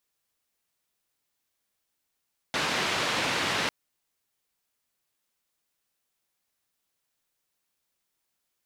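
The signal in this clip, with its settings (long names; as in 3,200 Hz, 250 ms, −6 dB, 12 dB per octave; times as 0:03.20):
band-limited noise 120–3,200 Hz, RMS −28 dBFS 1.15 s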